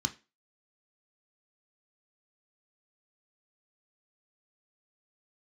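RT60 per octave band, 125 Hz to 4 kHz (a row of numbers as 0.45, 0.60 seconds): 0.25, 0.30, 0.30, 0.30, 0.30, 0.30 seconds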